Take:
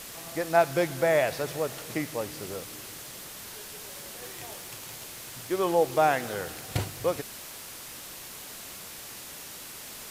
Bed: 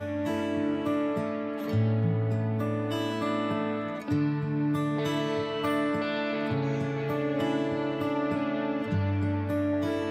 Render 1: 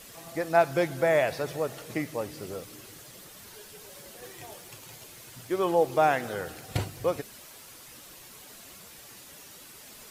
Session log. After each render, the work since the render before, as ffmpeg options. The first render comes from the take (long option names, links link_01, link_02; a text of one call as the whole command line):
ffmpeg -i in.wav -af "afftdn=noise_reduction=8:noise_floor=-43" out.wav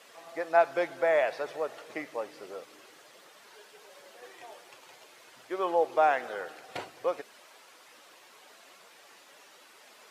ffmpeg -i in.wav -af "highpass=530,aemphasis=mode=reproduction:type=75fm" out.wav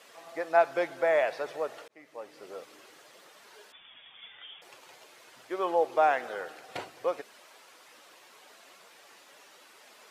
ffmpeg -i in.wav -filter_complex "[0:a]asettb=1/sr,asplit=3[link_01][link_02][link_03];[link_01]atrim=end=3.724[link_04];[link_02]atrim=start=3.72:end=4.62,asetpts=PTS-STARTPTS,afade=type=in:duration=0.004:curve=qsin,afade=type=out:start_time=0.896:duration=0.004:curve=qsin,lowpass=frequency=3300:width_type=q:width=0.5098,lowpass=frequency=3300:width_type=q:width=0.6013,lowpass=frequency=3300:width_type=q:width=0.9,lowpass=frequency=3300:width_type=q:width=2.563,afreqshift=-3900[link_05];[link_03]atrim=start=4.616[link_06];[link_04][link_05]acrossfade=duration=0.004:curve1=hsin:curve2=qsin[link_07];[link_07][link_06]acrossfade=duration=0.004:curve1=qsin:curve2=hsin,asplit=2[link_08][link_09];[link_08]atrim=end=1.88,asetpts=PTS-STARTPTS,afade=type=out:start_time=1.876:duration=0.004:curve=hsin[link_10];[link_09]atrim=start=1.88,asetpts=PTS-STARTPTS,afade=type=in:duration=0.73[link_11];[link_10][link_11]concat=n=2:v=0:a=1" out.wav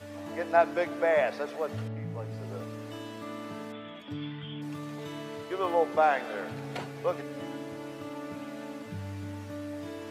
ffmpeg -i in.wav -i bed.wav -filter_complex "[1:a]volume=-11dB[link_01];[0:a][link_01]amix=inputs=2:normalize=0" out.wav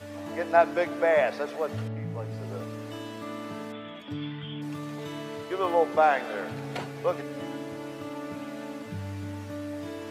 ffmpeg -i in.wav -af "volume=2.5dB" out.wav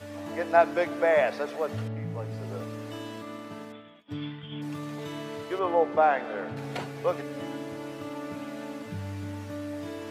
ffmpeg -i in.wav -filter_complex "[0:a]asplit=3[link_01][link_02][link_03];[link_01]afade=type=out:start_time=3.21:duration=0.02[link_04];[link_02]agate=range=-33dB:threshold=-34dB:ratio=3:release=100:detection=peak,afade=type=in:start_time=3.21:duration=0.02,afade=type=out:start_time=4.51:duration=0.02[link_05];[link_03]afade=type=in:start_time=4.51:duration=0.02[link_06];[link_04][link_05][link_06]amix=inputs=3:normalize=0,asettb=1/sr,asplit=3[link_07][link_08][link_09];[link_07]atrim=end=5.594[link_10];[link_08]atrim=start=5.59:end=6.57,asetpts=PTS-STARTPTS,afade=type=in:duration=0.004:curve=qsin,afade=type=out:start_time=0.976:duration=0.004:curve=qsin,lowpass=frequency=2000:poles=1[link_11];[link_09]atrim=start=6.566[link_12];[link_10][link_11]acrossfade=duration=0.004:curve1=hsin:curve2=qsin[link_13];[link_13][link_12]acrossfade=duration=0.004:curve1=qsin:curve2=hsin" out.wav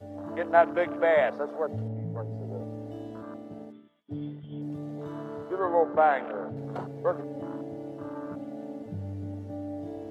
ffmpeg -i in.wav -af "bandreject=frequency=2500:width=11,afwtdn=0.0158" out.wav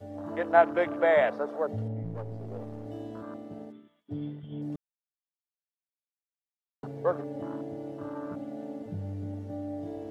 ffmpeg -i in.wav -filter_complex "[0:a]asettb=1/sr,asplit=3[link_01][link_02][link_03];[link_01]atrim=end=2.034[link_04];[link_02]atrim=start=2.03:end=2.86,asetpts=PTS-STARTPTS,afade=type=in:duration=0.004:curve=qsin,afade=type=out:start_time=0.826:duration=0.004:curve=qsin,aeval=exprs='if(lt(val(0),0),0.447*val(0),val(0))':channel_layout=same[link_05];[link_03]atrim=start=2.856[link_06];[link_04][link_05]acrossfade=duration=0.004:curve1=hsin:curve2=qsin[link_07];[link_07][link_06]acrossfade=duration=0.004:curve1=qsin:curve2=hsin,asplit=3[link_08][link_09][link_10];[link_08]atrim=end=4.76,asetpts=PTS-STARTPTS,afade=type=out:start_time=4.756:duration=0.004:curve=hsin[link_11];[link_09]atrim=start=4.76:end=6.83,asetpts=PTS-STARTPTS,volume=0[link_12];[link_10]atrim=start=6.83,asetpts=PTS-STARTPTS,afade=type=in:duration=0.004:curve=hsin[link_13];[link_11][link_12][link_13]concat=n=3:v=0:a=1" out.wav